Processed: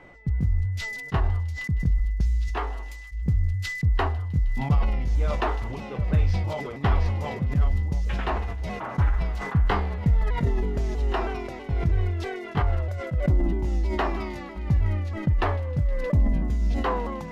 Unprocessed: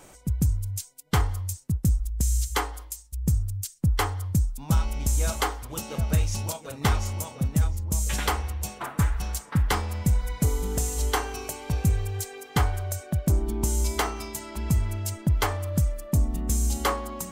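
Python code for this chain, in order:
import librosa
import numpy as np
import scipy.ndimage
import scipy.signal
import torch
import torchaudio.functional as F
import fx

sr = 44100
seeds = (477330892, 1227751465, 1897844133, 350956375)

y = fx.pitch_ramps(x, sr, semitones=-3.0, every_ms=322)
y = y + 10.0 ** (-50.0 / 20.0) * np.sin(2.0 * np.pi * 2000.0 * np.arange(len(y)) / sr)
y = fx.air_absorb(y, sr, metres=360.0)
y = fx.echo_wet_highpass(y, sr, ms=156, feedback_pct=84, hz=5000.0, wet_db=-14.5)
y = fx.sustainer(y, sr, db_per_s=33.0)
y = y * 10.0 ** (1.5 / 20.0)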